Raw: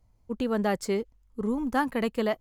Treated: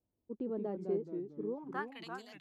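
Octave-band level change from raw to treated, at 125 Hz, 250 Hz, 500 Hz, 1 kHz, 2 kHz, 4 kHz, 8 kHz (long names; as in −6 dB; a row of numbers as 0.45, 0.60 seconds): −10.0 dB, −12.5 dB, −9.0 dB, −13.5 dB, −12.5 dB, below −10 dB, below −25 dB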